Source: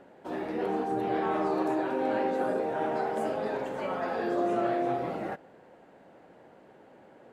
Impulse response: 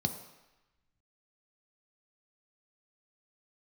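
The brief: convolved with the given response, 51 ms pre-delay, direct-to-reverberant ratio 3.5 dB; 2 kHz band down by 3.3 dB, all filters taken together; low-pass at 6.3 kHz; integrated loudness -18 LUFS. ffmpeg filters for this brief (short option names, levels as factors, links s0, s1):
-filter_complex "[0:a]lowpass=6300,equalizer=f=2000:t=o:g=-4.5,asplit=2[s0][s1];[1:a]atrim=start_sample=2205,adelay=51[s2];[s1][s2]afir=irnorm=-1:irlink=0,volume=0.422[s3];[s0][s3]amix=inputs=2:normalize=0,volume=2.99"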